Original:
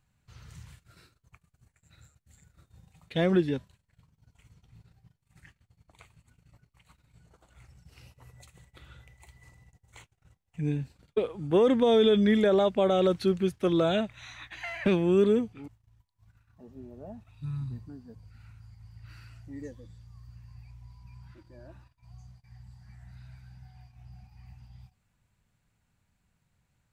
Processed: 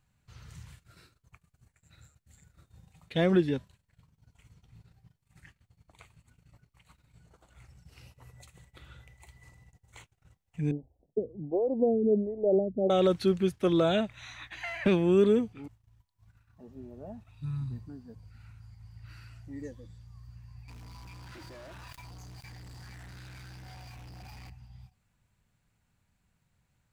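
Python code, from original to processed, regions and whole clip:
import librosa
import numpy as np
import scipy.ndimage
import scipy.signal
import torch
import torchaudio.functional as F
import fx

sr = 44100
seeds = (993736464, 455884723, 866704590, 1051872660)

y = fx.chain(x, sr, fx.ellip_lowpass(hz=730.0, order=4, stop_db=50),
    fx.stagger_phaser(hz=1.4), at=(10.71, 12.9))
y = fx.chain(y, sr, fx.low_shelf(hz=450.0, db=-11.5),
    fx.leveller(passes=5),
    fx.env_flatten(amount_pct=100), at=(20.68, 24.5))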